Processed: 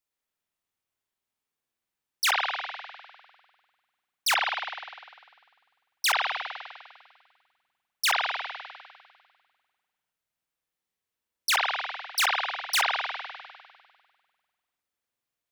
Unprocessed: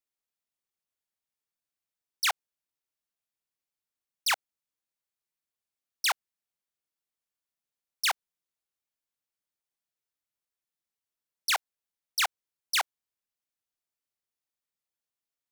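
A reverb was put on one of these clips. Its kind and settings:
spring reverb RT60 1.7 s, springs 49 ms, chirp 55 ms, DRR −2.5 dB
level +2 dB

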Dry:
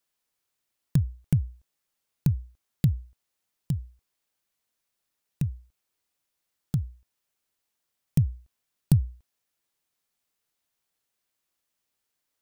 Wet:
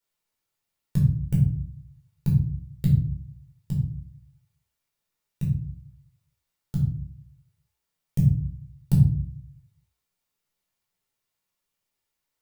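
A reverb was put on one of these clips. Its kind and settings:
rectangular room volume 510 cubic metres, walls furnished, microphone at 4.5 metres
level −7 dB

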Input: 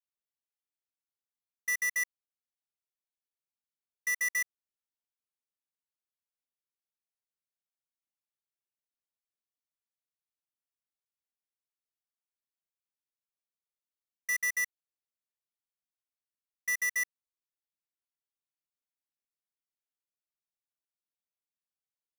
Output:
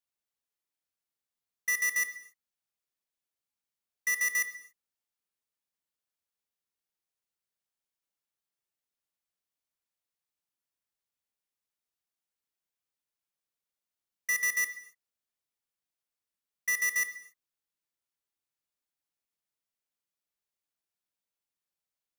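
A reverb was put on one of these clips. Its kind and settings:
reverb whose tail is shaped and stops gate 310 ms falling, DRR 10 dB
level +2.5 dB

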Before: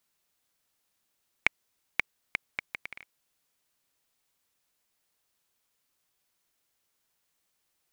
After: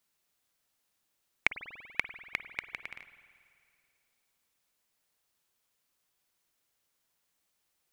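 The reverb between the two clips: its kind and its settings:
spring reverb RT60 2.3 s, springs 48 ms, chirp 45 ms, DRR 11 dB
level −1.5 dB

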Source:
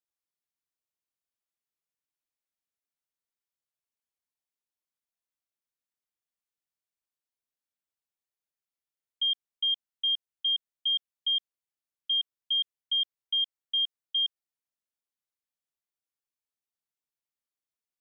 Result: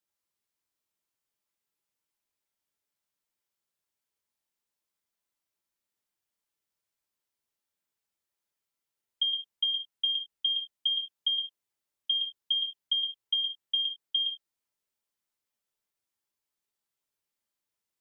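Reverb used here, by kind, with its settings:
reverb whose tail is shaped and stops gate 120 ms falling, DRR 1.5 dB
level +3 dB

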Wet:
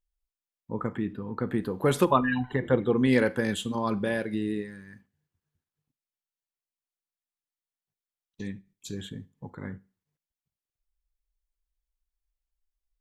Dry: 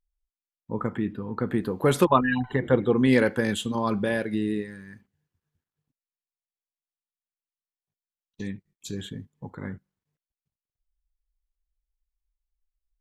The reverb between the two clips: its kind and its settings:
four-comb reverb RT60 0.33 s, combs from 32 ms, DRR 20 dB
level −2.5 dB

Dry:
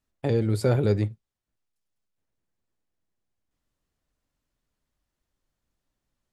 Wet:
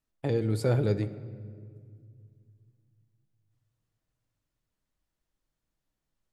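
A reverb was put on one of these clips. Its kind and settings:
rectangular room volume 4,000 cubic metres, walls mixed, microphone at 0.61 metres
level −4 dB

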